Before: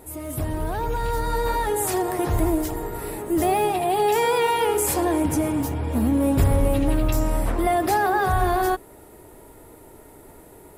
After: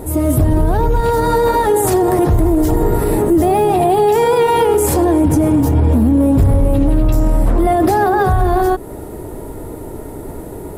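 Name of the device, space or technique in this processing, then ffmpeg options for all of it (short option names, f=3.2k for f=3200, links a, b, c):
mastering chain: -filter_complex "[0:a]asettb=1/sr,asplit=3[a][b][c];[a]atrim=end=1.014[d];[b]atrim=start=1.01:end=1.84,asetpts=PTS-STARTPTS,afade=t=in:d=0.004:c=qsin,afade=t=out:st=0.826:d=0.004:c=qsin,highpass=f=220:p=1[e];[c]atrim=start=1.836[f];[d][e]acrossfade=d=0.004:c1=hsin:c2=qsin[g];[g][f]acrossfade=d=0.004:c1=qsin:c2=hsin,equalizer=f=2.4k:t=o:w=0.77:g=-3,acompressor=threshold=-25dB:ratio=2.5,tiltshelf=f=680:g=5.5,asoftclip=type=hard:threshold=-14.5dB,alimiter=level_in=20dB:limit=-1dB:release=50:level=0:latency=1,volume=-4.5dB"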